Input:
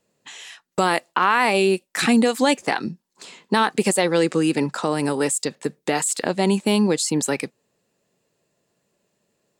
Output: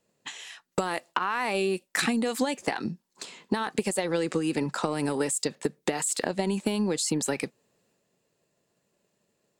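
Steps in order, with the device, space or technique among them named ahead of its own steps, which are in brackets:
drum-bus smash (transient designer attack +8 dB, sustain +4 dB; downward compressor 10 to 1, threshold −18 dBFS, peak gain reduction 12 dB; soft clipping −7.5 dBFS, distortion −24 dB)
level −4 dB

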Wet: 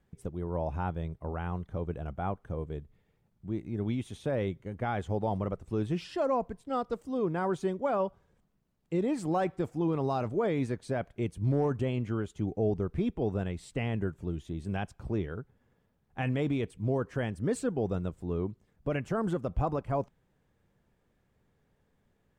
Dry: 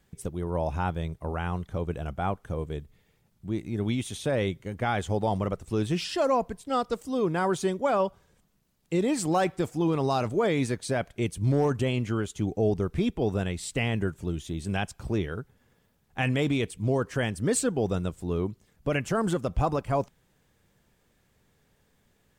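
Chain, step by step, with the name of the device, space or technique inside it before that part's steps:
through cloth (high-shelf EQ 2,600 Hz −13 dB)
level −3.5 dB

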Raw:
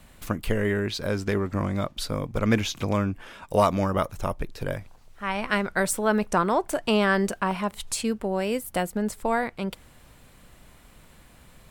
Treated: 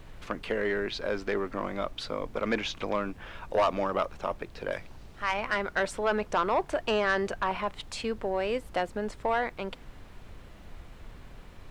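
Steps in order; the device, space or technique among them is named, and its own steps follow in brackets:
0:04.71–0:05.34: high-shelf EQ 2,800 Hz +12 dB
aircraft cabin announcement (band-pass filter 350–3,700 Hz; soft clipping −17.5 dBFS, distortion −13 dB; brown noise bed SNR 13 dB)

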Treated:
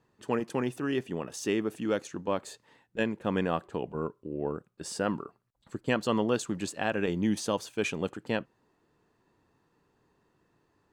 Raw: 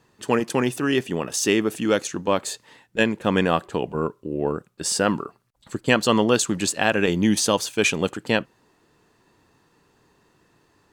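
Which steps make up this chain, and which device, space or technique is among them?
behind a face mask (high-shelf EQ 2,300 Hz −8 dB)
level −8 dB

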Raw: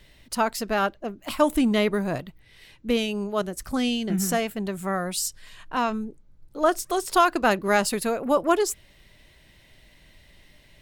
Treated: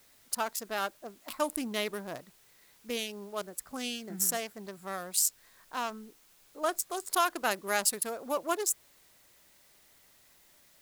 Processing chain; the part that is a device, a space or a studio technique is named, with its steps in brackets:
adaptive Wiener filter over 15 samples
turntable without a phono preamp (RIAA equalisation recording; white noise bed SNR 27 dB)
level −8.5 dB

